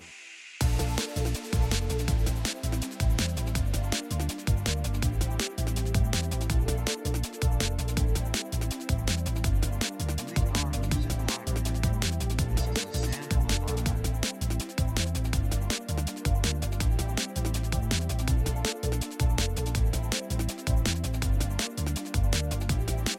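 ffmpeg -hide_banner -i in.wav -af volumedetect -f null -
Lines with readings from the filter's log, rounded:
mean_volume: -27.2 dB
max_volume: -11.1 dB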